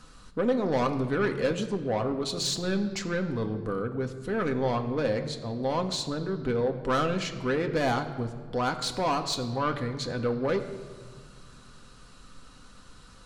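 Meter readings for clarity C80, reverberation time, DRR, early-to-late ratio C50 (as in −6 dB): 11.5 dB, 1.6 s, 4.5 dB, 11.0 dB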